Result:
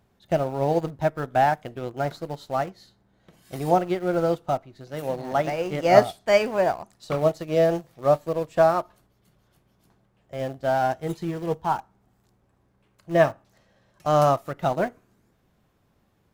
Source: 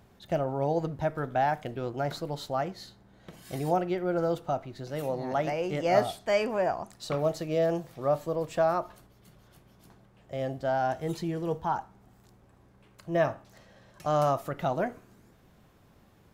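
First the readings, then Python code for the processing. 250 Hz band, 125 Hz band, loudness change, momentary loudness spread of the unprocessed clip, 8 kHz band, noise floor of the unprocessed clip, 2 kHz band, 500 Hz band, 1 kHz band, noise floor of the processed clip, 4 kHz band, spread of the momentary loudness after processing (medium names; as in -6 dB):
+4.0 dB, +4.0 dB, +6.0 dB, 9 LU, no reading, -60 dBFS, +6.0 dB, +6.0 dB, +6.0 dB, -66 dBFS, +4.0 dB, 12 LU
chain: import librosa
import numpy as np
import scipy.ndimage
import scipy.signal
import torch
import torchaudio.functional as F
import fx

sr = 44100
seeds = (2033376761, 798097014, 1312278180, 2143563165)

p1 = np.where(np.abs(x) >= 10.0 ** (-30.5 / 20.0), x, 0.0)
p2 = x + (p1 * 10.0 ** (-10.5 / 20.0))
p3 = fx.upward_expand(p2, sr, threshold_db=-43.0, expansion=1.5)
y = p3 * 10.0 ** (7.0 / 20.0)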